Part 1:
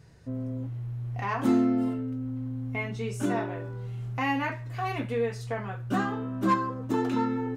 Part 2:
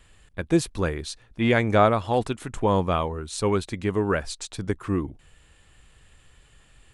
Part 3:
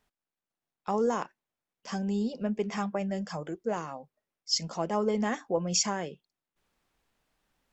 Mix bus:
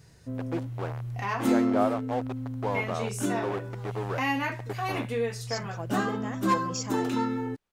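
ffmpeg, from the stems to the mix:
-filter_complex "[0:a]highshelf=f=3.8k:g=10,volume=-1dB[a];[1:a]acrusher=bits=3:mix=0:aa=0.000001,bandpass=f=680:t=q:w=1.1:csg=0,volume=-6.5dB,asplit=2[b][c];[2:a]deesser=0.45,adelay=1000,volume=-7dB[d];[c]apad=whole_len=384959[e];[d][e]sidechaincompress=threshold=-50dB:ratio=8:attack=16:release=483[f];[a][b][f]amix=inputs=3:normalize=0"

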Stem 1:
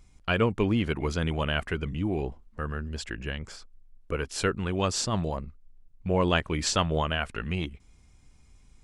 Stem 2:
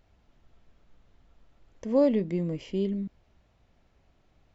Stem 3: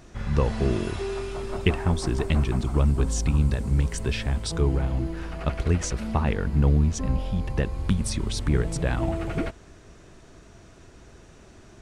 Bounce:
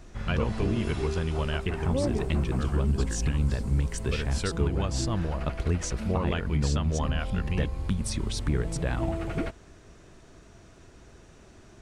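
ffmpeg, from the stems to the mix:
-filter_complex "[0:a]lowshelf=f=120:g=11,volume=-4.5dB[a];[1:a]volume=-5dB[b];[2:a]volume=-2.5dB[c];[a][b][c]amix=inputs=3:normalize=0,alimiter=limit=-16.5dB:level=0:latency=1:release=188"

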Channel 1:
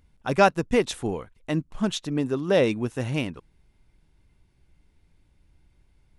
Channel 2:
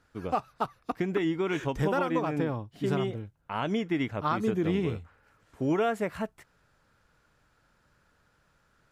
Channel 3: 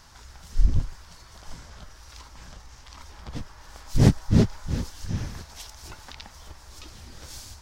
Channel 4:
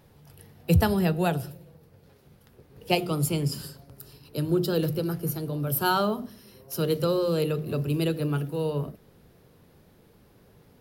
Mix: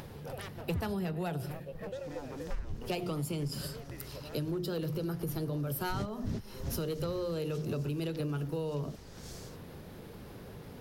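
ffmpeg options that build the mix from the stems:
-filter_complex "[0:a]tiltshelf=f=780:g=8,aeval=exprs='0.106*(abs(mod(val(0)/0.106+3,4)-2)-1)':c=same,volume=-20dB[a];[1:a]asplit=3[b][c][d];[b]bandpass=f=530:t=q:w=8,volume=0dB[e];[c]bandpass=f=1.84k:t=q:w=8,volume=-6dB[f];[d]bandpass=f=2.48k:t=q:w=8,volume=-9dB[g];[e][f][g]amix=inputs=3:normalize=0,volume=-8dB[h];[2:a]adelay=1950,volume=-8.5dB[i];[3:a]highshelf=f=9.2k:g=-5.5,asoftclip=type=hard:threshold=-18dB,volume=2dB[j];[h][j]amix=inputs=2:normalize=0,acompressor=mode=upward:threshold=-38dB:ratio=2.5,alimiter=limit=-21dB:level=0:latency=1:release=96,volume=0dB[k];[a][i][k]amix=inputs=3:normalize=0,acompressor=threshold=-31dB:ratio=12"

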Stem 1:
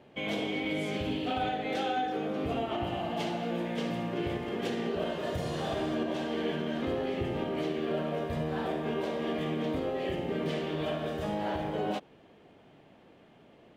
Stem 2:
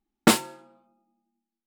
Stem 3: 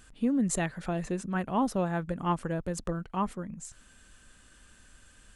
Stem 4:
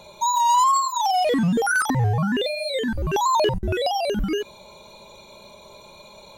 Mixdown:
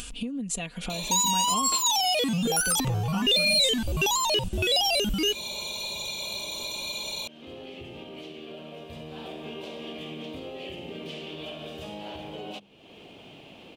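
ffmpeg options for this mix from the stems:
-filter_complex "[0:a]bandreject=f=50:t=h:w=6,bandreject=f=100:t=h:w=6,bandreject=f=150:t=h:w=6,bandreject=f=200:t=h:w=6,adelay=600,volume=-12.5dB,afade=t=in:st=8.88:d=0.52:silence=0.375837[a];[1:a]highpass=580,tiltshelf=f=970:g=3,adelay=1450,volume=-18.5dB[b];[2:a]aecho=1:1:4.2:0.65,acompressor=threshold=-33dB:ratio=6,volume=1.5dB,asplit=3[c][d][e];[c]atrim=end=1.75,asetpts=PTS-STARTPTS,afade=t=out:st=1.746:d=0.004:c=hsin[f];[d]atrim=start=1.75:end=2.42,asetpts=PTS-STARTPTS,volume=0[g];[e]atrim=start=2.42,asetpts=PTS-STARTPTS,afade=t=in:d=0.004:c=hsin[h];[f][g][h]concat=n=3:v=0:a=1[i];[3:a]highshelf=f=3.6k:g=9,acompressor=threshold=-26dB:ratio=6,asoftclip=type=tanh:threshold=-23dB,adelay=900,volume=2.5dB[j];[a][b][i][j]amix=inputs=4:normalize=0,highshelf=f=2.2k:t=q:w=3:g=6,acompressor=mode=upward:threshold=-30dB:ratio=2.5"

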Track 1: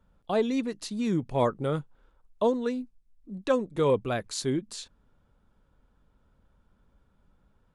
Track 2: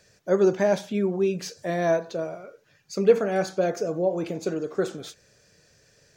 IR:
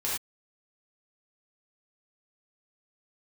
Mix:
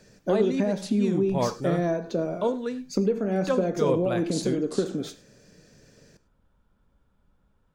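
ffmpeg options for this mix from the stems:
-filter_complex "[0:a]volume=-2.5dB,asplit=2[a][b];[b]volume=-18dB[c];[1:a]equalizer=f=240:t=o:w=1.5:g=14.5,acompressor=threshold=-21dB:ratio=10,volume=-1dB,asplit=2[d][e];[e]volume=-19.5dB[f];[2:a]atrim=start_sample=2205[g];[c][f]amix=inputs=2:normalize=0[h];[h][g]afir=irnorm=-1:irlink=0[i];[a][d][i]amix=inputs=3:normalize=0"

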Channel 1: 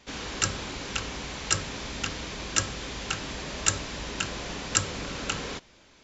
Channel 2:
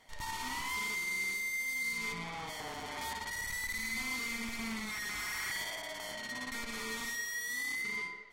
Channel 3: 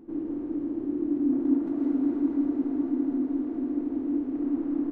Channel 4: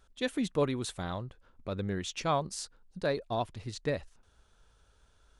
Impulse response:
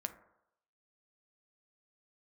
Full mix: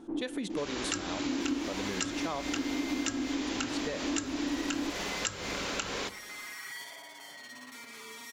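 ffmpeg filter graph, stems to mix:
-filter_complex "[0:a]adelay=500,volume=0.5dB,asplit=2[a][b];[b]volume=-5.5dB[c];[1:a]aecho=1:1:7.3:0.91,acrusher=bits=5:mode=log:mix=0:aa=0.000001,adelay=1200,volume=-8dB[d];[2:a]equalizer=f=850:w=1.3:g=9,volume=-1.5dB[e];[3:a]volume=2.5dB,asplit=3[f][g][h];[f]atrim=end=2.41,asetpts=PTS-STARTPTS,afade=t=out:st=2.406:d=0.004:c=hsin[i];[g]atrim=start=2.41:end=3.47,asetpts=PTS-STARTPTS,volume=0[j];[h]atrim=start=3.47,asetpts=PTS-STARTPTS,afade=t=in:d=0.004:c=hsin[k];[i][j][k]concat=n=3:v=0:a=1,asplit=3[l][m][n];[m]volume=-11.5dB[o];[n]apad=whole_len=216840[p];[e][p]sidechaincompress=threshold=-39dB:ratio=8:attack=16:release=139[q];[a][d][l]amix=inputs=3:normalize=0,highpass=210,acompressor=threshold=-31dB:ratio=6,volume=0dB[r];[4:a]atrim=start_sample=2205[s];[c][o]amix=inputs=2:normalize=0[t];[t][s]afir=irnorm=-1:irlink=0[u];[q][r][u]amix=inputs=3:normalize=0,acompressor=threshold=-31dB:ratio=3"

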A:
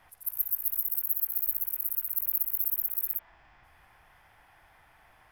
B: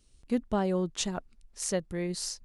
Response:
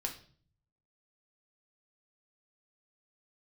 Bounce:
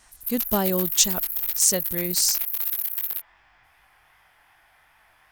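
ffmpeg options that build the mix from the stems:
-filter_complex "[0:a]aeval=exprs='0.1*(abs(mod(val(0)/0.1+3,4)-2)-1)':c=same,tiltshelf=f=880:g=-5,flanger=delay=18:depth=6.8:speed=2.6,volume=2.5dB[a];[1:a]equalizer=f=7.6k:w=0.5:g=14.5,dynaudnorm=f=110:g=7:m=4.5dB,volume=0dB[b];[a][b]amix=inputs=2:normalize=0"

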